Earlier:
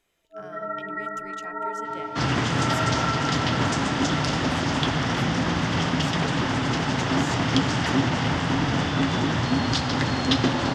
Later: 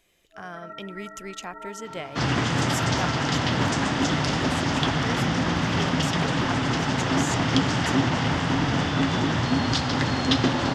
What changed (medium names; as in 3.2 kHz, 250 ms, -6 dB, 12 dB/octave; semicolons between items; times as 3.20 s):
speech +7.5 dB; first sound -10.0 dB